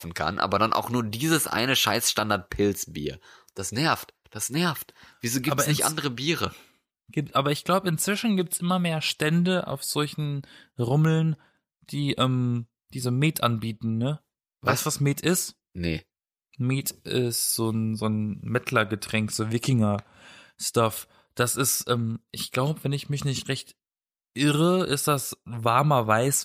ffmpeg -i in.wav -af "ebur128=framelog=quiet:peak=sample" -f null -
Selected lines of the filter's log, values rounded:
Integrated loudness:
  I:         -25.5 LUFS
  Threshold: -35.9 LUFS
Loudness range:
  LRA:         2.6 LU
  Threshold: -46.4 LUFS
  LRA low:   -27.6 LUFS
  LRA high:  -25.0 LUFS
Sample peak:
  Peak:       -6.9 dBFS